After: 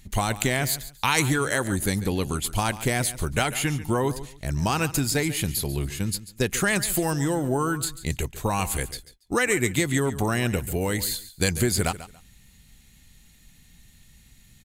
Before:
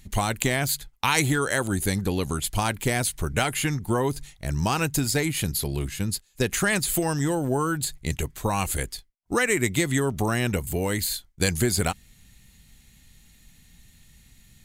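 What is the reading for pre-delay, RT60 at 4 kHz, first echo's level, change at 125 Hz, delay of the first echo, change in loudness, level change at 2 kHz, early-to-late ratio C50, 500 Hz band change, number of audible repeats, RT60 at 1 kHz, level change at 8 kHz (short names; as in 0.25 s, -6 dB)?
none, none, -15.0 dB, 0.0 dB, 0.141 s, 0.0 dB, 0.0 dB, none, 0.0 dB, 2, none, 0.0 dB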